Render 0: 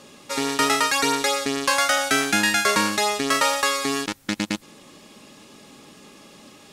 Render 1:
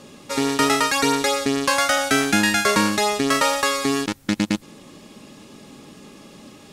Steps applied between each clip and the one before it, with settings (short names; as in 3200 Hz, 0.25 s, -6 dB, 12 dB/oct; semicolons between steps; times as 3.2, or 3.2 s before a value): low shelf 420 Hz +7.5 dB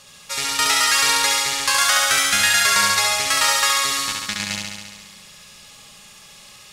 passive tone stack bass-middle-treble 10-0-10; flutter echo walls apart 11.8 m, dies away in 1.5 s; gain +5 dB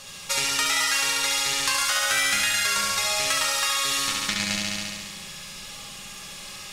compressor, threshold -26 dBFS, peak gain reduction 13 dB; on a send at -4 dB: reverb RT60 0.55 s, pre-delay 4 ms; on the sum: gain +4 dB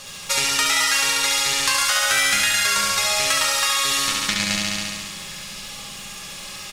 crackle 330/s -39 dBFS; echo 0.917 s -20.5 dB; gain +4 dB